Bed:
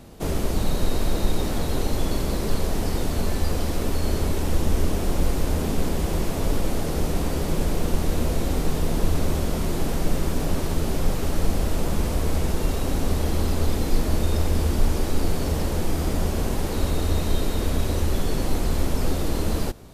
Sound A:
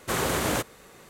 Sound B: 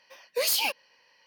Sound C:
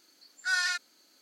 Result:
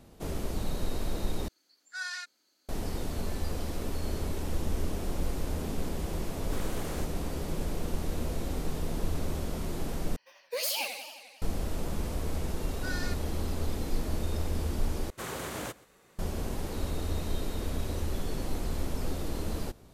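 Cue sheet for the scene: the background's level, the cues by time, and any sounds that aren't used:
bed -9.5 dB
1.48 replace with C -9 dB
6.43 add A -16 dB
10.16 replace with B -6.5 dB + warbling echo 88 ms, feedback 69%, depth 174 cents, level -8 dB
12.37 add C -11 dB + mismatched tape noise reduction decoder only
15.1 replace with A -11 dB + echo 0.128 s -22.5 dB

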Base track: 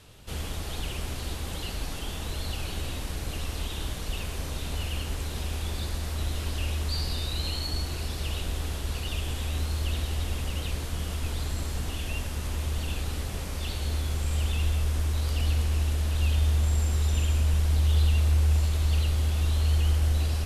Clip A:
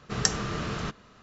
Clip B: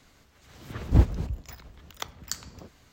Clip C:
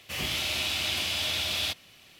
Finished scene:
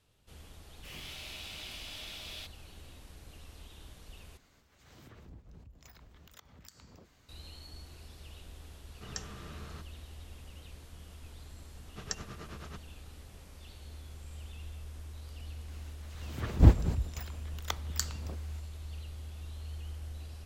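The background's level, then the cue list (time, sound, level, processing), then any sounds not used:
base track -18.5 dB
0.74 add C -15.5 dB
4.37 replace with B -6.5 dB + compressor, threshold -44 dBFS
8.91 add A -16.5 dB
11.86 add A -11 dB + tremolo triangle 9.3 Hz, depth 90%
15.68 add B

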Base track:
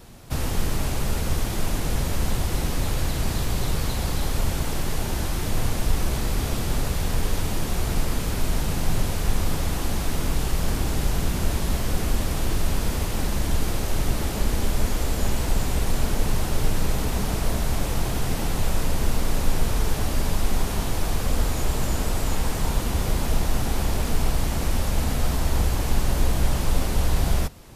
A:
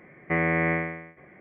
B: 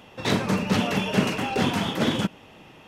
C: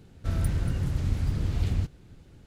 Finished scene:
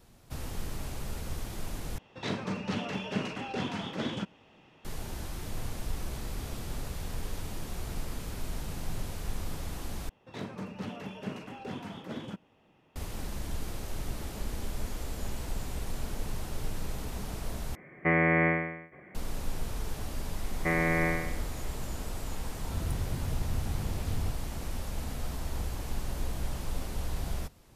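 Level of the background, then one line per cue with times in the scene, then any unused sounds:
base track -12.5 dB
1.98 replace with B -10.5 dB + LPF 6700 Hz
10.09 replace with B -15.5 dB + high shelf 2100 Hz -7 dB
17.75 replace with A -0.5 dB
20.35 add A -3.5 dB
22.46 add C -7.5 dB

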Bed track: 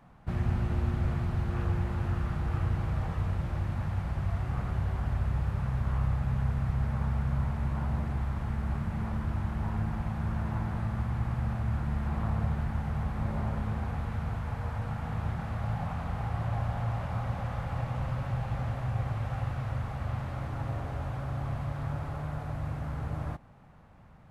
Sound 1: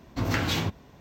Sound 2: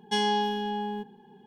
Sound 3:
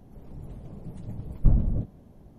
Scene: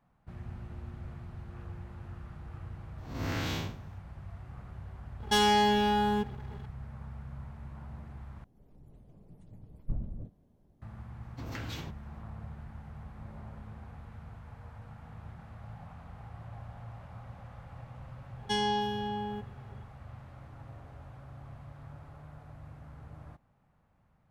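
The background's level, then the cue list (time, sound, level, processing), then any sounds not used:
bed track -14 dB
2.98 add 1 -5 dB + time blur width 0.158 s
5.2 add 2 -4.5 dB + sample leveller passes 3
8.44 replace with 3 -14.5 dB
11.21 add 1 -14.5 dB
18.38 add 2 -4 dB

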